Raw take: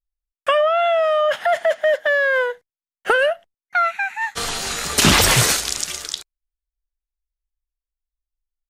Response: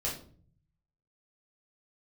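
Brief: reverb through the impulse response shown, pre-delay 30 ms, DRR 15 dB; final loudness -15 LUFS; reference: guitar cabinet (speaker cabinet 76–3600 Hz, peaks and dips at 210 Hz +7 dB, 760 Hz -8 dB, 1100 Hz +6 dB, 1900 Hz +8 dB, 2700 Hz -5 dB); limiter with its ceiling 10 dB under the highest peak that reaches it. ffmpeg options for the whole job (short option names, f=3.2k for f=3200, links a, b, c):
-filter_complex "[0:a]alimiter=limit=-12dB:level=0:latency=1,asplit=2[a][b];[1:a]atrim=start_sample=2205,adelay=30[c];[b][c]afir=irnorm=-1:irlink=0,volume=-19dB[d];[a][d]amix=inputs=2:normalize=0,highpass=76,equalizer=f=210:t=q:w=4:g=7,equalizer=f=760:t=q:w=4:g=-8,equalizer=f=1.1k:t=q:w=4:g=6,equalizer=f=1.9k:t=q:w=4:g=8,equalizer=f=2.7k:t=q:w=4:g=-5,lowpass=f=3.6k:w=0.5412,lowpass=f=3.6k:w=1.3066,volume=4.5dB"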